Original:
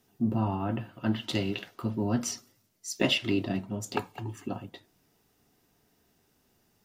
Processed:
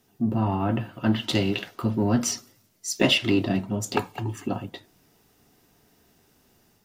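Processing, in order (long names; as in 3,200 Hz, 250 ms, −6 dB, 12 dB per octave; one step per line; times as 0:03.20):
automatic gain control gain up to 4 dB
in parallel at −6.5 dB: soft clipping −24 dBFS, distortion −9 dB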